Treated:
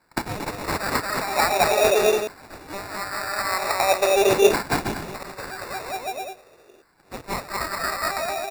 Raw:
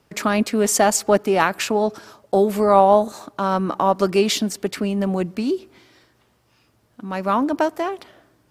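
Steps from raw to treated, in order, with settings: comb filter that takes the minimum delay 1.5 ms; peaking EQ 370 Hz +14.5 dB 0.79 oct; on a send: bouncing-ball echo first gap 230 ms, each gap 0.8×, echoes 5; on the sum: reverse; compression 6:1, threshold -21 dBFS, peak gain reduction 14.5 dB; reverse; LFO high-pass saw down 0.44 Hz 340–4800 Hz; dynamic bell 3.6 kHz, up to +6 dB, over -47 dBFS, Q 1.5; sample-and-hold 14×; trim +2.5 dB

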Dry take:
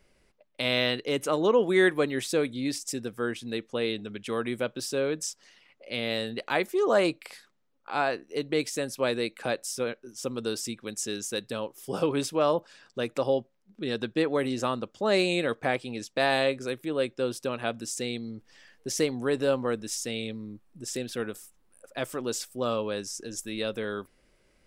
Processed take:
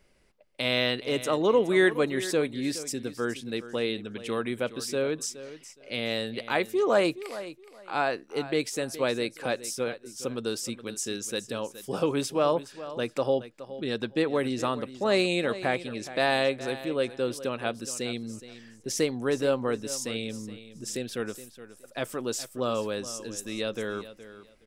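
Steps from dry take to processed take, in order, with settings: feedback delay 419 ms, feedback 21%, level -14.5 dB

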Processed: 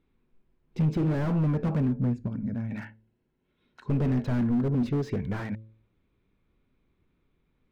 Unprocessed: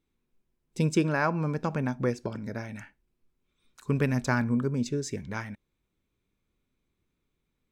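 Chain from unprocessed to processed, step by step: 1.86–2.71 s: time-frequency box 280–6400 Hz -15 dB; de-hum 109.9 Hz, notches 5; 2.77–4.75 s: comb of notches 1.2 kHz; saturation -27 dBFS, distortion -9 dB; distance through air 310 m; slew-rate limiter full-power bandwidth 7.2 Hz; trim +8.5 dB

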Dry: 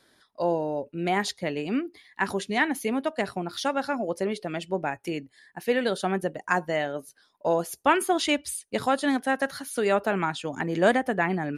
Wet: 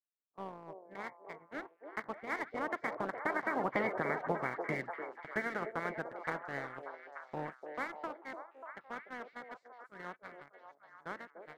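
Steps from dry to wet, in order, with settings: spectral peaks clipped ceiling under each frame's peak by 22 dB; Doppler pass-by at 3.87 s, 37 m/s, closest 4 m; FFT band-pass 110–2300 Hz; gate -59 dBFS, range -20 dB; waveshaping leveller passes 1; compression 16:1, threshold -41 dBFS, peak gain reduction 18.5 dB; on a send: repeats whose band climbs or falls 294 ms, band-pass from 500 Hz, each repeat 0.7 oct, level -3 dB; on the sum: trim +11 dB

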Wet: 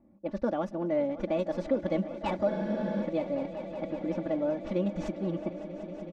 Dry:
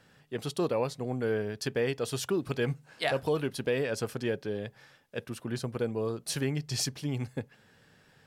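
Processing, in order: tracing distortion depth 0.16 ms; level-controlled noise filter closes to 500 Hz, open at -25 dBFS; distance through air 75 m; speed mistake 33 rpm record played at 45 rpm; high-pass 140 Hz 6 dB/octave; tilt EQ -4 dB/octave; band-stop 4.4 kHz, Q 17; comb 3.5 ms, depth 79%; echo with a slow build-up 187 ms, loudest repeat 5, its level -17 dB; wow and flutter 20 cents; spectral freeze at 2.50 s, 0.52 s; trim -5 dB

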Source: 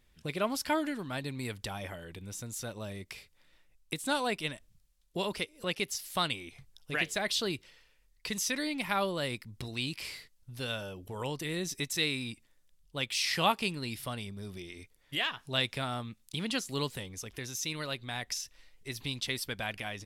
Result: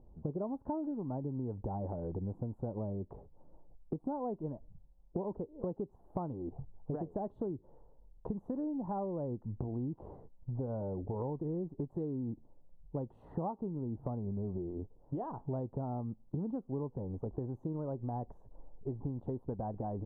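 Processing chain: elliptic low-pass 870 Hz, stop band 60 dB; dynamic bell 680 Hz, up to -4 dB, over -48 dBFS, Q 1.7; compression 10:1, threshold -45 dBFS, peak gain reduction 18 dB; trim +11 dB

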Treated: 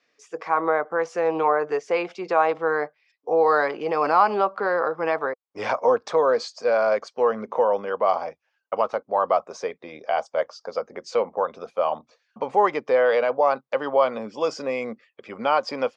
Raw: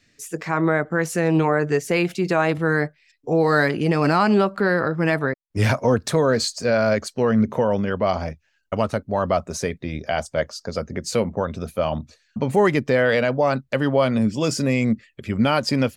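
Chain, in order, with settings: cabinet simulation 490–5100 Hz, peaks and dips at 490 Hz +7 dB, 800 Hz +7 dB, 1.1 kHz +8 dB, 1.8 kHz -5 dB, 2.8 kHz -4 dB, 4.1 kHz -8 dB; trim -3 dB

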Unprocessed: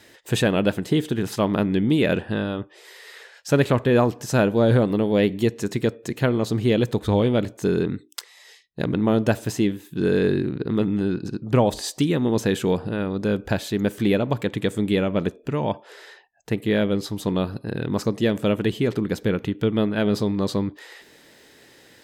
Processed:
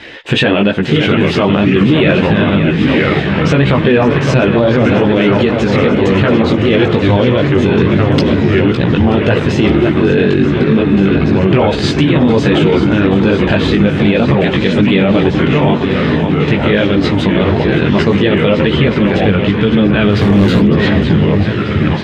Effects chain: in parallel at +2.5 dB: compression, threshold -30 dBFS, peak gain reduction 16 dB; on the sum: resonant low-pass 2.9 kHz, resonance Q 1.8; on a send: shuffle delay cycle 932 ms, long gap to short 1.5:1, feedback 61%, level -11 dB; on the sum: ever faster or slower copies 575 ms, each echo -3 st, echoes 3, each echo -6 dB; 20.12–20.63 s: hard clipper -17 dBFS, distortion -25 dB; chorus voices 6, 1 Hz, delay 17 ms, depth 4.2 ms; loudness maximiser +14.5 dB; trim -1 dB

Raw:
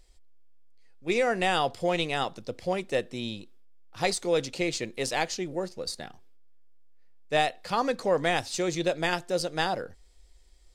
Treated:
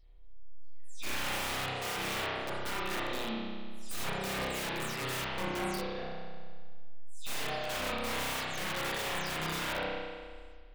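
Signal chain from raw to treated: delay that grows with frequency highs early, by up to 230 ms; bass shelf 65 Hz +4 dB; on a send: feedback echo behind a low-pass 118 ms, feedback 38%, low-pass 960 Hz, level -13 dB; on the sum: integer overflow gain 27 dB; spring tank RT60 1.7 s, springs 31 ms, chirp 45 ms, DRR -7.5 dB; trim -8.5 dB

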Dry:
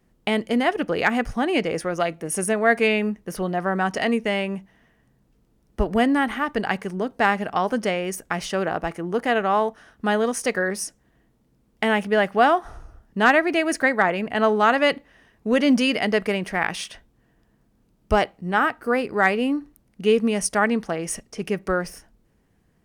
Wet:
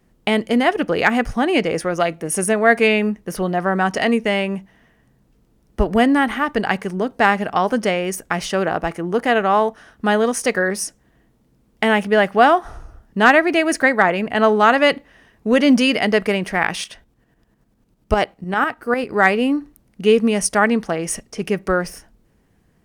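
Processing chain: 16.84–19.10 s: tremolo saw up 10 Hz, depth 60%; trim +4.5 dB

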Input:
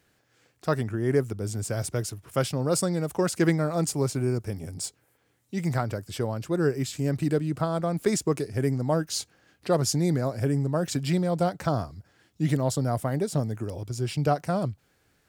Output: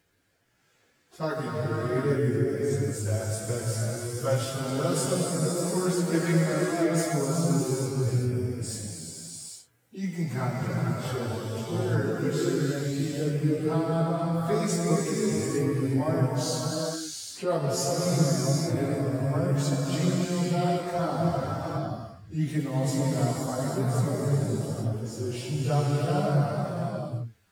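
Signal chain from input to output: gated-style reverb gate 490 ms flat, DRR -4 dB; plain phase-vocoder stretch 1.8×; trim -3 dB

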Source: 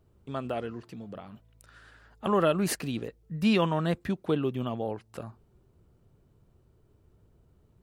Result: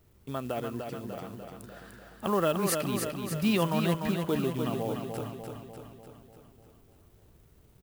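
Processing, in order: in parallel at -2 dB: compression 10:1, threshold -34 dBFS, peak gain reduction 14.5 dB; on the sum: companded quantiser 6-bit; treble shelf 11 kHz +9.5 dB; feedback delay 297 ms, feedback 58%, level -5.5 dB; trim -4 dB

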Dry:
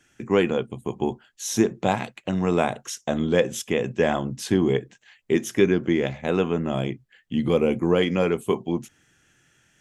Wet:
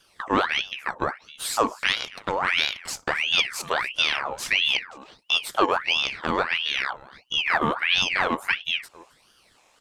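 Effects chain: partial rectifier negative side -3 dB; in parallel at +0.5 dB: compression, threshold -32 dBFS, peak gain reduction 17 dB; on the sum: delay 267 ms -21 dB; ring modulator with a swept carrier 1.9 kHz, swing 65%, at 1.5 Hz

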